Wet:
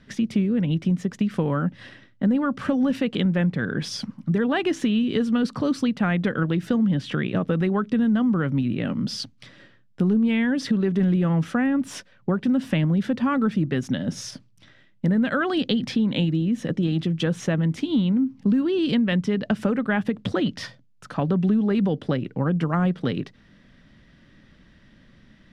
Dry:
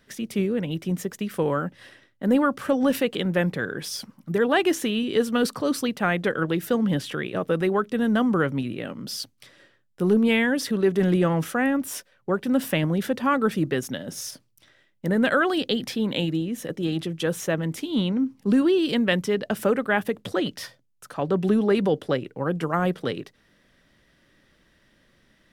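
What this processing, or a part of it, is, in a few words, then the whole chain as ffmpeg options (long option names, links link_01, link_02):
jukebox: -af "lowpass=5100,lowshelf=frequency=300:width_type=q:width=1.5:gain=6.5,acompressor=threshold=-24dB:ratio=4,volume=4dB"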